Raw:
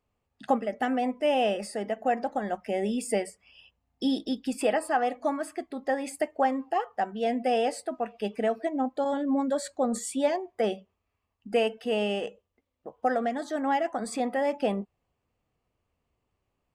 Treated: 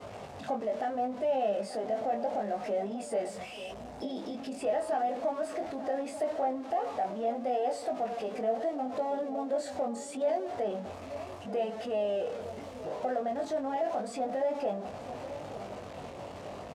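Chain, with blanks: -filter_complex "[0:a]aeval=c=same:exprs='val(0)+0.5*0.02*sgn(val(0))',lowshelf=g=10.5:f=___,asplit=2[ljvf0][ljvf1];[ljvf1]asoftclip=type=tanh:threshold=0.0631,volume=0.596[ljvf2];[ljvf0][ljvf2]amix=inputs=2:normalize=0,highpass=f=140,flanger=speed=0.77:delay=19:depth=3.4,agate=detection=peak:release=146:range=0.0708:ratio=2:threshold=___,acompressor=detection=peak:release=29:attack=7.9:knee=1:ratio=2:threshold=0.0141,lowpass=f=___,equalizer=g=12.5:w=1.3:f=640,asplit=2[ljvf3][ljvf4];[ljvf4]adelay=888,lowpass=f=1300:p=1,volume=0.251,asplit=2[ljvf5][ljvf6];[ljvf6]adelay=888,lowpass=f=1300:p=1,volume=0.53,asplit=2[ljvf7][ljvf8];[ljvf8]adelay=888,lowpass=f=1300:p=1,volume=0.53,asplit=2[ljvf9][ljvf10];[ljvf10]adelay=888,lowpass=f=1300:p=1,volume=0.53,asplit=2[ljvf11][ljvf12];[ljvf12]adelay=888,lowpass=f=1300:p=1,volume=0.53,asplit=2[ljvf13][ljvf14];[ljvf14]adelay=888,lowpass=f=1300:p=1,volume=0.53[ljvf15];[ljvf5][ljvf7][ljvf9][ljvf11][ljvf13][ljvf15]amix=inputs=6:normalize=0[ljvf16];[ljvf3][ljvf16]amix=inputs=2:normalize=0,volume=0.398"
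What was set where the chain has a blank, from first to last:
180, 0.0158, 7700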